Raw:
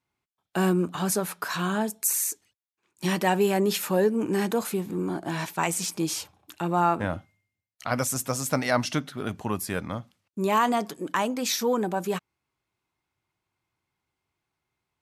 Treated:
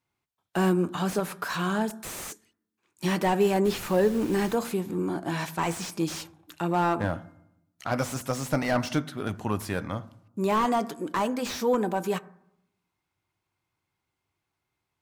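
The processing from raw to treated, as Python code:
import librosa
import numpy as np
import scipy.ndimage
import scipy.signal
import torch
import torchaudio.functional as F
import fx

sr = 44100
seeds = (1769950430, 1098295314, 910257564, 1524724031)

y = fx.dmg_noise_colour(x, sr, seeds[0], colour='pink', level_db=-44.0, at=(3.64, 4.54), fade=0.02)
y = fx.rev_fdn(y, sr, rt60_s=0.78, lf_ratio=1.35, hf_ratio=0.35, size_ms=59.0, drr_db=15.0)
y = fx.slew_limit(y, sr, full_power_hz=93.0)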